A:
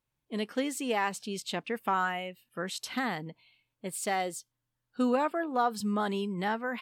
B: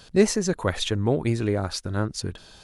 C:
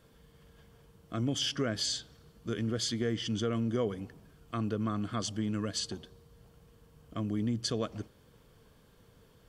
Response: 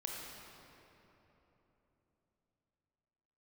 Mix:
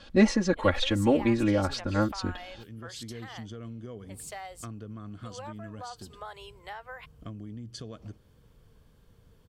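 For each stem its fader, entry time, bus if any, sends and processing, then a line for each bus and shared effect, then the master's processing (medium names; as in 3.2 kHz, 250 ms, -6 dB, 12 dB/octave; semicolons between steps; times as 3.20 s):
-5.0 dB, 0.25 s, bus A, no send, inverse Chebyshev high-pass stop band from 200 Hz, stop band 50 dB; wow and flutter 23 cents
-1.5 dB, 0.00 s, no bus, no send, low-pass 3.7 kHz 12 dB/octave; comb 3.6 ms, depth 95%
-4.0 dB, 0.10 s, bus A, no send, auto duck -14 dB, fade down 0.30 s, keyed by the second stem
bus A: 0.0 dB, bass shelf 120 Hz +12 dB; compression 12:1, threshold -37 dBFS, peak gain reduction 11 dB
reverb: none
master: none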